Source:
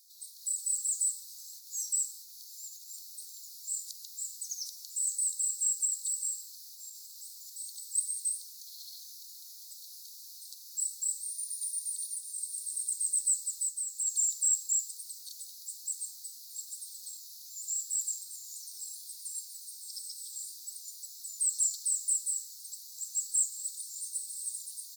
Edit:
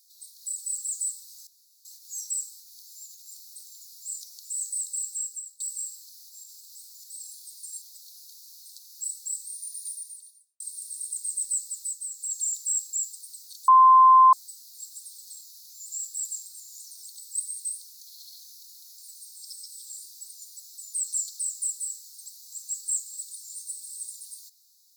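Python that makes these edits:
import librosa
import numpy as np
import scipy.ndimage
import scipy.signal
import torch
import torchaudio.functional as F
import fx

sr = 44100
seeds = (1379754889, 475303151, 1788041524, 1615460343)

y = fx.edit(x, sr, fx.insert_room_tone(at_s=1.47, length_s=0.38),
    fx.cut(start_s=3.83, length_s=0.84),
    fx.fade_out_to(start_s=5.52, length_s=0.54, floor_db=-20.0),
    fx.swap(start_s=7.66, length_s=1.92, other_s=18.82, other_length_s=0.62),
    fx.fade_out_span(start_s=11.66, length_s=0.7, curve='qua'),
    fx.bleep(start_s=15.44, length_s=0.65, hz=1040.0, db=-11.0), tone=tone)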